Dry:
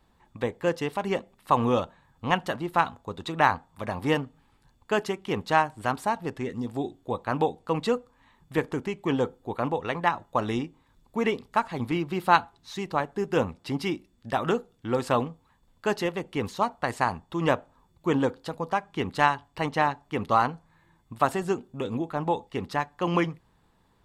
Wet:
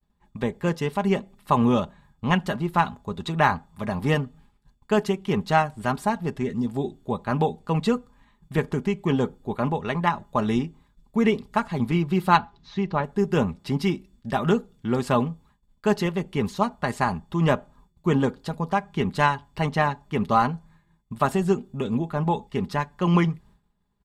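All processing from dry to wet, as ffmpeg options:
ffmpeg -i in.wav -filter_complex "[0:a]asettb=1/sr,asplit=3[link_01][link_02][link_03];[link_01]atrim=end=12.374[link_04];[link_02]atrim=start=12.37:end=13.04,asetpts=PTS-STARTPTS,afade=type=in:duration=0.004:curve=qsin,afade=type=out:start_time=0.666:duration=0.004:curve=qsin,lowpass=frequency=5600:width=0.5412,lowpass=frequency=5600:width=1.3066,acrossover=split=3300[link_05][link_06];[link_06]acompressor=threshold=-52dB:ratio=4:attack=1:release=60[link_07];[link_05][link_07]amix=inputs=2:normalize=0[link_08];[link_03]atrim=start=13.036[link_09];[link_04][link_08]acrossfade=duration=0.004:curve1=hsin:curve2=qsin[link_10];[link_10][link_09]acrossfade=duration=0.004:curve1=qsin:curve2=hsin,agate=range=-33dB:threshold=-54dB:ratio=3:detection=peak,bass=frequency=250:gain=9,treble=frequency=4000:gain=1,aecho=1:1:4.9:0.49" out.wav

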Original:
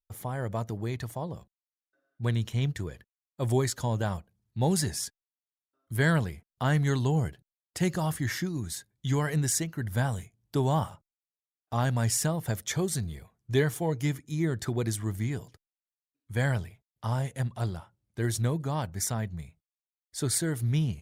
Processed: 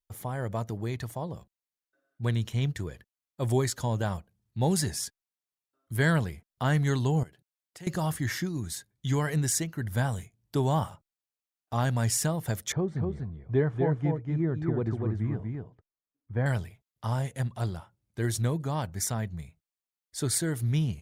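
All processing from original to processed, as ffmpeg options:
ffmpeg -i in.wav -filter_complex "[0:a]asettb=1/sr,asplit=3[link_01][link_02][link_03];[link_01]atrim=end=7.234[link_04];[link_02]atrim=start=7.23:end=7.87,asetpts=PTS-STARTPTS,afade=type=in:duration=0.004:curve=qsin,afade=type=out:start_time=0.636:duration=0.004:curve=qsin,highpass=frequency=200:poles=1,acompressor=threshold=-54dB:ratio=2:attack=3.2:release=140:knee=1:detection=peak[link_05];[link_03]atrim=start=7.866[link_06];[link_04][link_05]acrossfade=duration=0.004:curve1=hsin:curve2=qsin[link_07];[link_07][link_06]acrossfade=duration=0.004:curve1=qsin:curve2=hsin,asettb=1/sr,asplit=3[link_08][link_09][link_10];[link_08]atrim=end=12.724[link_11];[link_09]atrim=start=12.72:end=16.46,asetpts=PTS-STARTPTS,afade=type=in:duration=0.004:curve=qsin,afade=type=out:start_time=3.736:duration=0.004:curve=qsin,lowpass=1200,aecho=1:1:243:0.631,atrim=end_sample=164934[link_12];[link_10]atrim=start=16.456[link_13];[link_11][link_12]acrossfade=duration=0.004:curve1=hsin:curve2=qsin[link_14];[link_14][link_13]acrossfade=duration=0.004:curve1=qsin:curve2=hsin" out.wav

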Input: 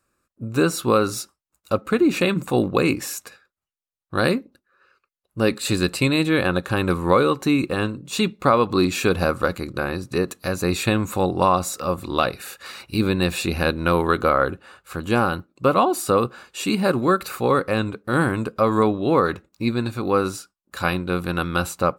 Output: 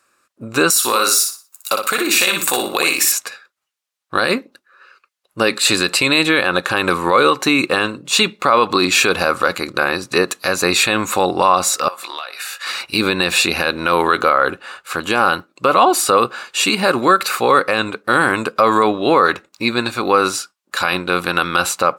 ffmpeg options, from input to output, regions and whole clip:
ffmpeg -i in.wav -filter_complex "[0:a]asettb=1/sr,asplit=3[link_01][link_02][link_03];[link_01]atrim=end=0.704[link_04];[link_02]atrim=start=0.7:end=3.12,asetpts=PTS-STARTPTS,afade=type=in:duration=0.004:curve=qsin,afade=type=out:start_time=2.416:duration=0.004:curve=qsin,aemphasis=mode=production:type=riaa,acompressor=threshold=-22dB:ratio=6:attack=3.2:release=140:knee=1:detection=peak,aecho=1:1:60|120|180|240:0.562|0.157|0.0441|0.0123,atrim=end_sample=106722[link_05];[link_03]atrim=start=3.116[link_06];[link_04][link_05]acrossfade=duration=0.004:curve1=hsin:curve2=qsin[link_07];[link_07][link_06]acrossfade=duration=0.004:curve1=qsin:curve2=hsin,asettb=1/sr,asplit=3[link_08][link_09][link_10];[link_08]atrim=end=11.884[link_11];[link_09]atrim=start=11.88:end=12.67,asetpts=PTS-STARTPTS,afade=type=in:duration=0.004:curve=qsin,afade=type=out:start_time=0.786:duration=0.004:curve=qsin,highpass=790,acompressor=threshold=-36dB:ratio=10:attack=3.2:release=140:knee=1:detection=peak,asplit=2[link_12][link_13];[link_13]adelay=17,volume=-7.5dB[link_14];[link_12][link_14]amix=inputs=2:normalize=0,atrim=end_sample=34839[link_15];[link_10]atrim=start=12.666[link_16];[link_11][link_15]acrossfade=duration=0.004:curve1=hsin:curve2=qsin[link_17];[link_17][link_16]acrossfade=duration=0.004:curve1=qsin:curve2=hsin,highpass=frequency=1100:poles=1,highshelf=frequency=11000:gain=-11,alimiter=level_in=16dB:limit=-1dB:release=50:level=0:latency=1,volume=-1dB" out.wav

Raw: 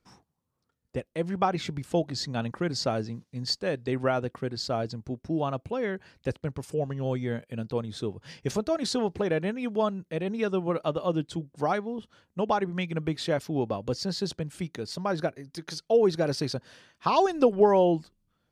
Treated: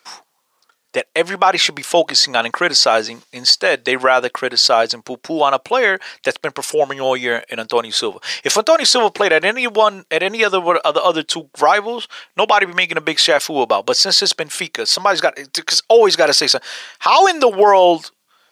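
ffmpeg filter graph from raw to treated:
ffmpeg -i in.wav -filter_complex "[0:a]asettb=1/sr,asplit=3[link_01][link_02][link_03];[link_01]atrim=end=11.884[link_04];[link_02]atrim=start=11.88:end=12.79,asetpts=PTS-STARTPTS,afade=type=in:duration=0.004:curve=qsin,afade=type=out:start_time=0.906:duration=0.004:curve=qsin,highpass=45,equalizer=frequency=2400:width_type=o:width=0.95:gain=7.5[link_05];[link_03]atrim=start=12.786[link_06];[link_04][link_05]acrossfade=duration=0.004:curve1=hsin:curve2=qsin[link_07];[link_07][link_06]acrossfade=duration=0.004:curve1=qsin:curve2=hsin,highpass=740,equalizer=frequency=4000:width_type=o:width=2.5:gain=3,alimiter=level_in=22.5dB:limit=-1dB:release=50:level=0:latency=1,volume=-1dB" out.wav

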